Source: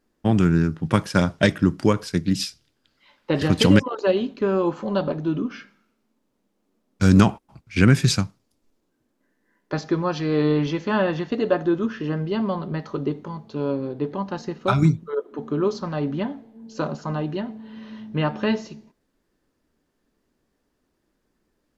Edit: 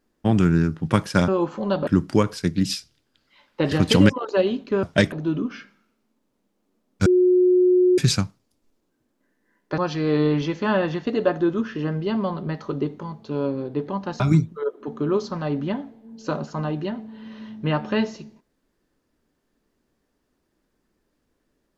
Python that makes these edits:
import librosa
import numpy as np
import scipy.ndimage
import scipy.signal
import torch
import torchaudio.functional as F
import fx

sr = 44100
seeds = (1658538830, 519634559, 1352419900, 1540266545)

y = fx.edit(x, sr, fx.swap(start_s=1.28, length_s=0.29, other_s=4.53, other_length_s=0.59),
    fx.bleep(start_s=7.06, length_s=0.92, hz=363.0, db=-13.0),
    fx.cut(start_s=9.78, length_s=0.25),
    fx.cut(start_s=14.45, length_s=0.26), tone=tone)